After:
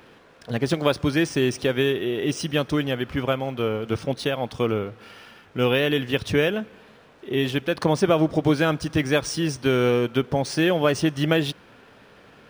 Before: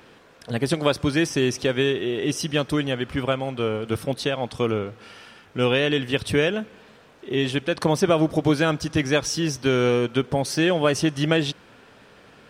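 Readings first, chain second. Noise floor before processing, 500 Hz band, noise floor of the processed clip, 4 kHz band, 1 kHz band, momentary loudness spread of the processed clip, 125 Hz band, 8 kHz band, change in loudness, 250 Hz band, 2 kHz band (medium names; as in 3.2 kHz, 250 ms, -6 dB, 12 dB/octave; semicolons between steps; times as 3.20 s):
-51 dBFS, 0.0 dB, -52 dBFS, -1.5 dB, 0.0 dB, 7 LU, 0.0 dB, -3.5 dB, 0.0 dB, 0.0 dB, -0.5 dB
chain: decimation joined by straight lines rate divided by 3×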